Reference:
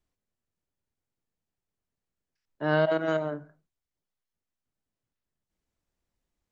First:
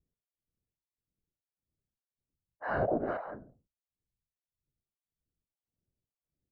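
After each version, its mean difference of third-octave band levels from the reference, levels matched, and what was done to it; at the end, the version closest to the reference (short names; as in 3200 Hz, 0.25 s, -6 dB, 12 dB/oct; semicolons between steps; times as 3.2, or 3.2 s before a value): 7.0 dB: low-pass opened by the level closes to 510 Hz, open at -27 dBFS; whisperiser; harmonic tremolo 1.7 Hz, depth 100%, crossover 750 Hz; running mean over 13 samples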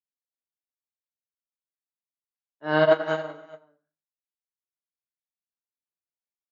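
4.5 dB: HPF 400 Hz 6 dB/oct; on a send: tapped delay 81/111/182/263/354/378 ms -19/-10.5/-14.5/-11.5/-15/-9 dB; on the sum: Schroeder reverb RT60 0.34 s, combs from 26 ms, DRR 6.5 dB; upward expander 2.5:1, over -40 dBFS; gain +7.5 dB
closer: second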